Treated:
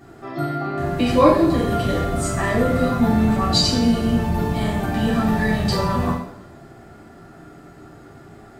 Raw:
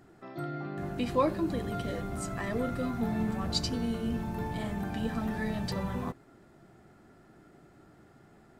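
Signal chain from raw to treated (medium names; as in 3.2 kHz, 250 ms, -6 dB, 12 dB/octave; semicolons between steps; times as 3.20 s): two-slope reverb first 0.61 s, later 1.6 s, DRR -6.5 dB; trim +6.5 dB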